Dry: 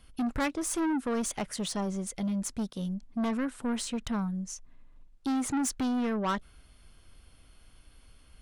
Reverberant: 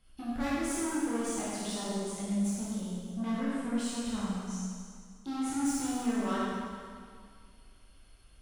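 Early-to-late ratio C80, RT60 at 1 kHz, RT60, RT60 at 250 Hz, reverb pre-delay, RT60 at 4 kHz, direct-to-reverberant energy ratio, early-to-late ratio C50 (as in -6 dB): -2.0 dB, 2.1 s, 2.1 s, 2.0 s, 7 ms, 2.0 s, -9.0 dB, -4.0 dB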